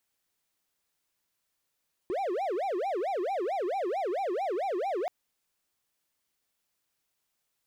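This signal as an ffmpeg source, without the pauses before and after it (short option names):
-f lavfi -i "aevalsrc='0.0501*(1-4*abs(mod((573.5*t-226.5/(2*PI*4.5)*sin(2*PI*4.5*t))+0.25,1)-0.5))':d=2.98:s=44100"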